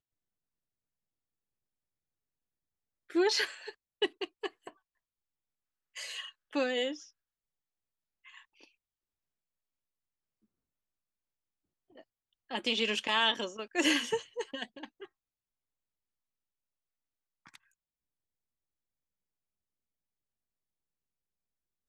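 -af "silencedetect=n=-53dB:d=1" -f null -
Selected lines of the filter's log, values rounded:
silence_start: 0.00
silence_end: 3.10 | silence_duration: 3.10
silence_start: 4.71
silence_end: 5.96 | silence_duration: 1.25
silence_start: 7.09
silence_end: 8.25 | silence_duration: 1.16
silence_start: 8.68
silence_end: 11.95 | silence_duration: 3.28
silence_start: 15.06
silence_end: 17.46 | silence_duration: 2.40
silence_start: 17.56
silence_end: 21.89 | silence_duration: 4.33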